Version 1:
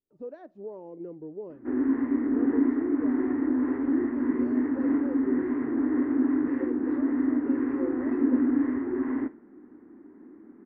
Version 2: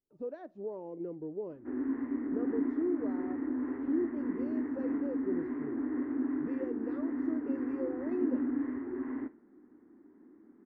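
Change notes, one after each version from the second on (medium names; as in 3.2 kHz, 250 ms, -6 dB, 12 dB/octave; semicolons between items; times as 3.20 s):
background -8.5 dB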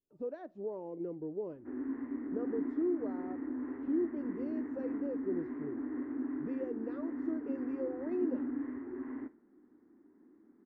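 background -4.5 dB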